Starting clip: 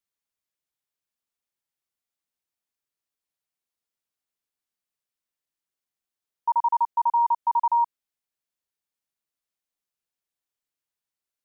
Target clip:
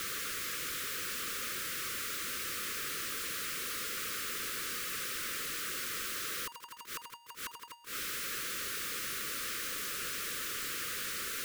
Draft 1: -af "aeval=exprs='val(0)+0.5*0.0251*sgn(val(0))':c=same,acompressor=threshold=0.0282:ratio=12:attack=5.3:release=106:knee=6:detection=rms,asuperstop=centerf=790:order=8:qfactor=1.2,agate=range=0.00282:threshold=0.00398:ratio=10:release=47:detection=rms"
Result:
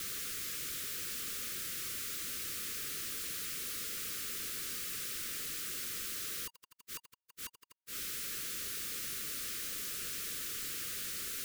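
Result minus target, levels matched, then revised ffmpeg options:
1 kHz band -8.5 dB
-af "aeval=exprs='val(0)+0.5*0.0251*sgn(val(0))':c=same,acompressor=threshold=0.0282:ratio=12:attack=5.3:release=106:knee=6:detection=rms,asuperstop=centerf=790:order=8:qfactor=1.2,equalizer=f=1000:w=0.45:g=10.5,agate=range=0.00282:threshold=0.00398:ratio=10:release=47:detection=rms"

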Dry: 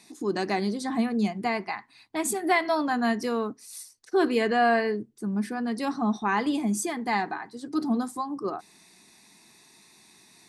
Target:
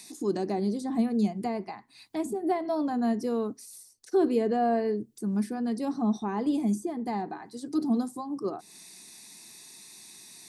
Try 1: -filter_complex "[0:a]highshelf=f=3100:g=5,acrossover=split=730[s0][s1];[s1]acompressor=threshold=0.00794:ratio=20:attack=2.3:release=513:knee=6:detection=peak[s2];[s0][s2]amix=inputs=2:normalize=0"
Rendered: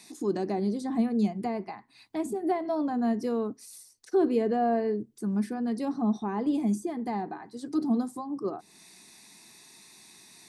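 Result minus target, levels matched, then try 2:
8 kHz band -3.0 dB
-filter_complex "[0:a]highshelf=f=3100:g=15.5,acrossover=split=730[s0][s1];[s1]acompressor=threshold=0.00794:ratio=20:attack=2.3:release=513:knee=6:detection=peak[s2];[s0][s2]amix=inputs=2:normalize=0"

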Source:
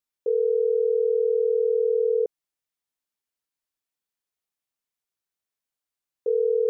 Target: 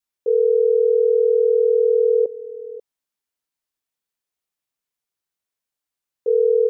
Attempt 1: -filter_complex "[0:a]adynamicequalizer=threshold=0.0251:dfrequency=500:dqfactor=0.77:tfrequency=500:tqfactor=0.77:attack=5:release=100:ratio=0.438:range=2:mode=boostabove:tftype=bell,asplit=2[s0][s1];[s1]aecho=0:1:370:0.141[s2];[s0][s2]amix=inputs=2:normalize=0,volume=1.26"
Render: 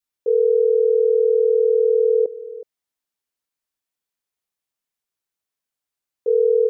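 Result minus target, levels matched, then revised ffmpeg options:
echo 168 ms early
-filter_complex "[0:a]adynamicequalizer=threshold=0.0251:dfrequency=500:dqfactor=0.77:tfrequency=500:tqfactor=0.77:attack=5:release=100:ratio=0.438:range=2:mode=boostabove:tftype=bell,asplit=2[s0][s1];[s1]aecho=0:1:538:0.141[s2];[s0][s2]amix=inputs=2:normalize=0,volume=1.26"

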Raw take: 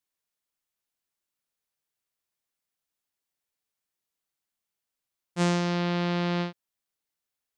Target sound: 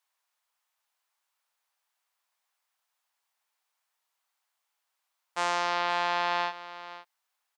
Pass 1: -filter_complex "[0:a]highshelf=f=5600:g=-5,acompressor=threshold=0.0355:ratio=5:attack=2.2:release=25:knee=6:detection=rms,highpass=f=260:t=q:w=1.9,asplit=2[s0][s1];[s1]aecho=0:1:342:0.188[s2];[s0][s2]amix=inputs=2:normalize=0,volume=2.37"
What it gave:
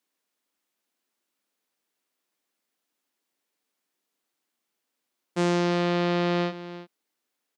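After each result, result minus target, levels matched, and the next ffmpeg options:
250 Hz band +17.5 dB; echo 178 ms early
-filter_complex "[0:a]highshelf=f=5600:g=-5,acompressor=threshold=0.0355:ratio=5:attack=2.2:release=25:knee=6:detection=rms,highpass=f=880:t=q:w=1.9,asplit=2[s0][s1];[s1]aecho=0:1:342:0.188[s2];[s0][s2]amix=inputs=2:normalize=0,volume=2.37"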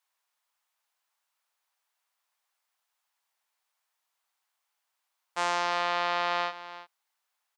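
echo 178 ms early
-filter_complex "[0:a]highshelf=f=5600:g=-5,acompressor=threshold=0.0355:ratio=5:attack=2.2:release=25:knee=6:detection=rms,highpass=f=880:t=q:w=1.9,asplit=2[s0][s1];[s1]aecho=0:1:520:0.188[s2];[s0][s2]amix=inputs=2:normalize=0,volume=2.37"

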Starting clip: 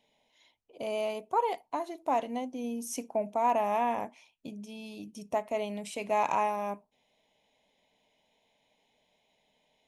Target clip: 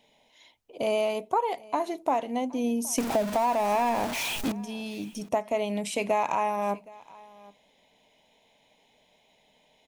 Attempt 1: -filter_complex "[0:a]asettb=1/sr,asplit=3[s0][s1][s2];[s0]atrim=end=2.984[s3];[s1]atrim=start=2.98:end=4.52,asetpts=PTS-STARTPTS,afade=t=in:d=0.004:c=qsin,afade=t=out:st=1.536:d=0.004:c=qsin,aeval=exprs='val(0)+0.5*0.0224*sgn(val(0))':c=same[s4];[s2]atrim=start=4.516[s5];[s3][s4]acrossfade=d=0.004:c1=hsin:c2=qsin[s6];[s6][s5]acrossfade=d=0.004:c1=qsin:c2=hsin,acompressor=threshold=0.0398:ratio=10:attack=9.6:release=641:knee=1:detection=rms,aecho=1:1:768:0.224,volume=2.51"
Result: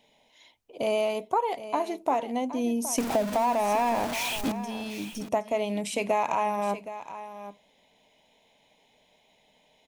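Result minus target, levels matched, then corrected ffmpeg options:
echo-to-direct +9.5 dB
-filter_complex "[0:a]asettb=1/sr,asplit=3[s0][s1][s2];[s0]atrim=end=2.984[s3];[s1]atrim=start=2.98:end=4.52,asetpts=PTS-STARTPTS,afade=t=in:d=0.004:c=qsin,afade=t=out:st=1.536:d=0.004:c=qsin,aeval=exprs='val(0)+0.5*0.0224*sgn(val(0))':c=same[s4];[s2]atrim=start=4.516[s5];[s3][s4]acrossfade=d=0.004:c1=hsin:c2=qsin[s6];[s6][s5]acrossfade=d=0.004:c1=qsin:c2=hsin,acompressor=threshold=0.0398:ratio=10:attack=9.6:release=641:knee=1:detection=rms,aecho=1:1:768:0.075,volume=2.51"

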